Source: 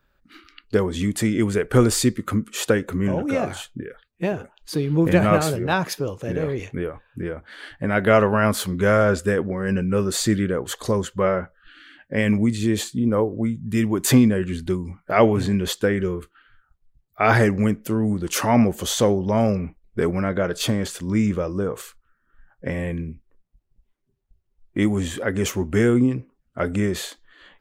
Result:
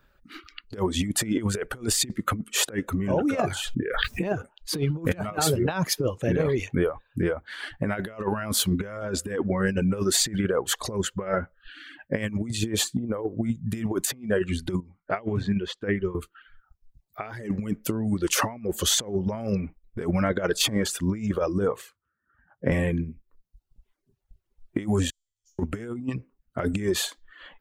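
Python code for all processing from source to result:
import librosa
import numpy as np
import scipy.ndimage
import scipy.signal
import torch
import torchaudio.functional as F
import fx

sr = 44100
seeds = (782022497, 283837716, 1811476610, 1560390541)

y = fx.chain(x, sr, fx.high_shelf(hz=7800.0, db=-3.5),
    fx.pre_swell(db_per_s=35.0), at=(3.54, 4.35))
y = fx.chain(y, sr, fx.lowpass(hz=3700.0, slope=12),
    fx.upward_expand(threshold_db=-35.0, expansion=1.5), at=(14.8, 16.15))
y = fx.chain(y, sr, fx.highpass(hz=68.0, slope=24),
    fx.high_shelf(hz=2300.0, db=-12.0), at=(21.76, 22.72))
y = fx.chain(y, sr, fx.cheby2_bandstop(low_hz=130.0, high_hz=1600.0, order=4, stop_db=70),
    fx.air_absorb(metres=240.0),
    fx.comb_fb(f0_hz=110.0, decay_s=1.1, harmonics='all', damping=0.0, mix_pct=90), at=(25.1, 25.59))
y = fx.dereverb_blind(y, sr, rt60_s=0.81)
y = fx.over_compress(y, sr, threshold_db=-25.0, ratio=-0.5)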